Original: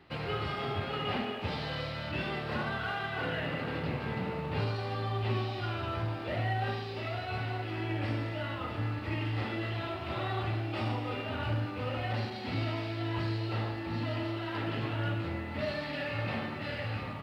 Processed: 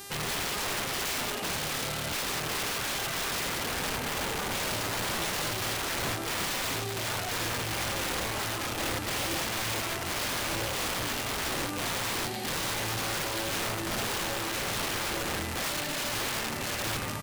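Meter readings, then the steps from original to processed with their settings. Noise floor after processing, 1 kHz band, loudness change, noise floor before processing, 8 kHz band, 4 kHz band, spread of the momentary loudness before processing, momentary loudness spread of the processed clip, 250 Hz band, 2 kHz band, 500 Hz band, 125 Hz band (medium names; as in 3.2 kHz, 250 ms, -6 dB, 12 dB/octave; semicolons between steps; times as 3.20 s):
-34 dBFS, +3.0 dB, +4.5 dB, -39 dBFS, no reading, +10.0 dB, 3 LU, 1 LU, -1.0 dB, +5.5 dB, +1.0 dB, -6.0 dB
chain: echo from a far wall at 25 m, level -28 dB; integer overflow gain 31.5 dB; mains buzz 400 Hz, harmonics 35, -49 dBFS -1 dB/octave; trim +4.5 dB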